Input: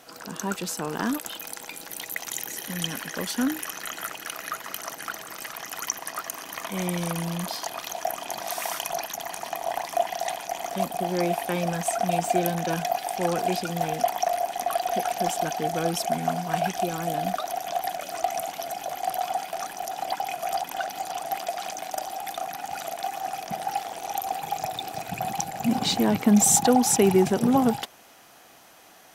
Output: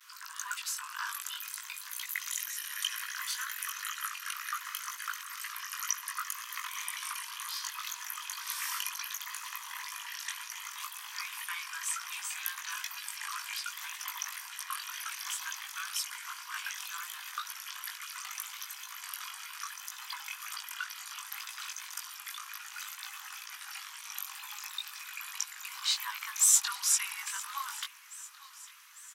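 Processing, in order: chorus 2 Hz, delay 18 ms, depth 2.9 ms; vibrato 0.66 Hz 50 cents; steep high-pass 1 kHz 96 dB/octave; feedback delay 849 ms, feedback 56%, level -19 dB

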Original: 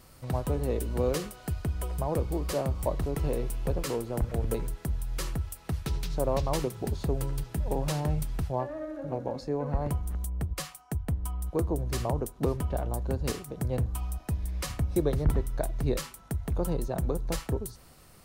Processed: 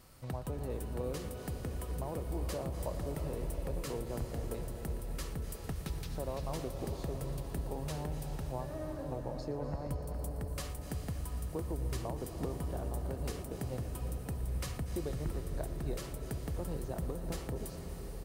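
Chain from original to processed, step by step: compression 2.5:1, threshold -33 dBFS, peak gain reduction 9.5 dB; delay 118 ms -17 dB; on a send at -4.5 dB: reverberation RT60 6.3 s, pre-delay 231 ms; on the sum: trim -4.5 dB

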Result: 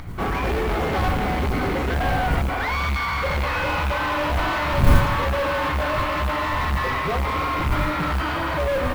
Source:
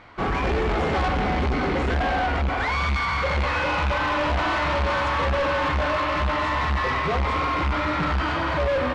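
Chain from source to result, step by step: wind noise 110 Hz -27 dBFS; upward compressor, threshold -35 dBFS; modulation noise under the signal 26 dB

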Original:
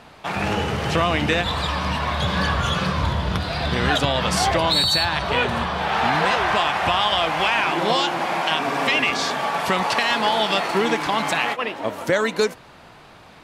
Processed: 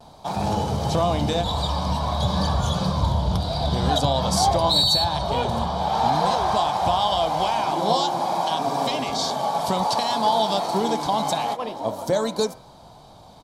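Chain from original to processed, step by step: high-order bell 2 kHz -16 dB 1.3 oct; comb 1.3 ms, depth 35%; de-hum 80.41 Hz, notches 29; vibrato 0.51 Hz 25 cents

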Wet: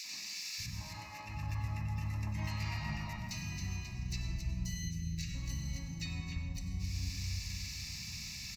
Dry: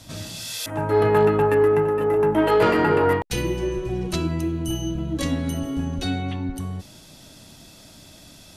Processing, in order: FFT filter 110 Hz 0 dB, 200 Hz -2 dB, 500 Hz -27 dB, 2.6 kHz +3 dB, 8.3 kHz +10 dB; on a send: feedback delay 268 ms, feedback 42%, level -13 dB; on the sum: compression 5:1, threshold -40 dBFS, peak gain reduction 18 dB; high-pass 43 Hz 24 dB/octave; de-hum 80.81 Hz, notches 2; in parallel at -0.5 dB: peak limiter -33.5 dBFS, peak gain reduction 9.5 dB; on the sum: spectral selection erased 4.65–5.30 s, 240–2300 Hz; harmony voices -12 st -10 dB, -7 st -5 dB, +12 st -11 dB; treble shelf 9.4 kHz -12 dB; static phaser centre 2.2 kHz, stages 8; three bands offset in time highs, mids, lows 40/580 ms, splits 280/1600 Hz; plate-style reverb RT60 0.93 s, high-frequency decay 0.65×, pre-delay 80 ms, DRR 7.5 dB; trim -2 dB

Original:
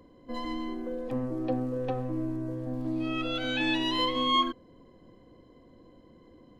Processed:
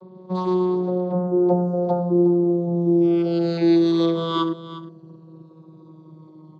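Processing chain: vocoder on a note that slides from F#3, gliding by -3 st; high-order bell 2.2 kHz -14.5 dB 1.1 oct; comb 5.5 ms, depth 89%; delay 359 ms -14.5 dB; trim +7.5 dB

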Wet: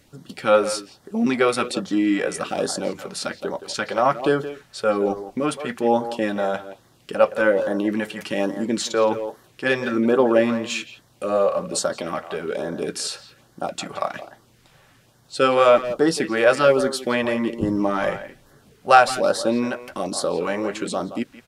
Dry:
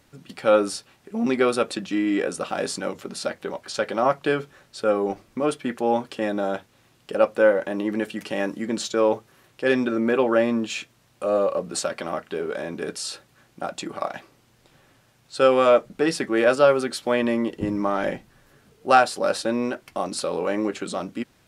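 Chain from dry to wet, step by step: speakerphone echo 170 ms, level -11 dB; LFO notch sine 1.2 Hz 260–2600 Hz; trim +3.5 dB

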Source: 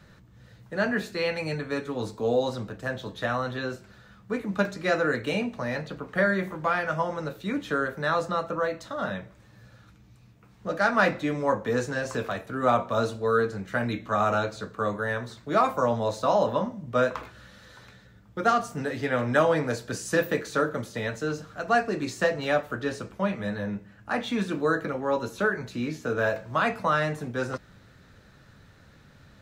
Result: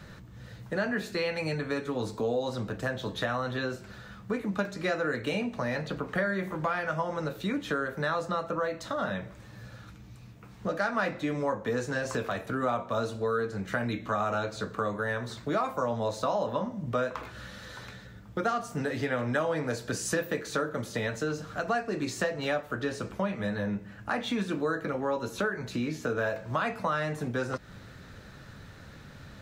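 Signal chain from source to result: compression 3:1, threshold -36 dBFS, peak gain reduction 14.5 dB; trim +6 dB

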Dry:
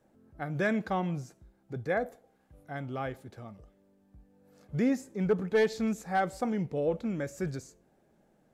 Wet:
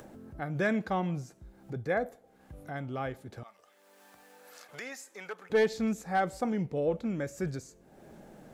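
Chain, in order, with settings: 3.43–5.50 s: high-pass 1.1 kHz 12 dB/octave; upward compressor, threshold -37 dBFS

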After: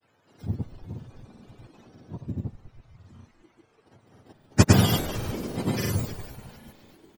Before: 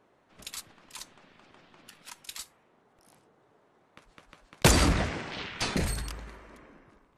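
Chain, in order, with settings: spectrum inverted on a logarithmic axis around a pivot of 960 Hz; frequency-shifting echo 274 ms, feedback 54%, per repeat -110 Hz, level -13.5 dB; granulator, pitch spread up and down by 0 st; trim +4 dB

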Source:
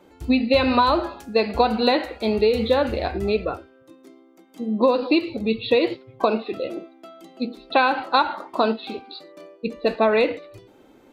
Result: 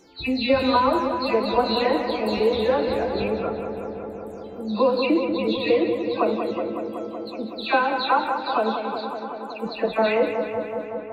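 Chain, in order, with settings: delay that grows with frequency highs early, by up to 273 ms; filtered feedback delay 187 ms, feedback 83%, low-pass 2.9 kHz, level -7 dB; trim -1.5 dB

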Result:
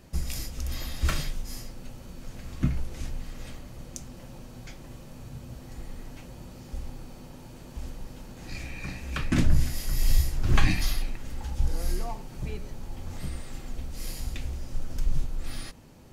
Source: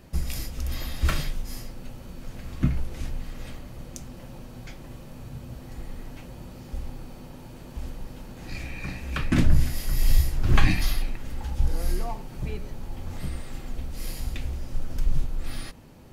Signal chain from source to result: peaking EQ 6.7 kHz +4.5 dB 1.1 oct; trim -2.5 dB

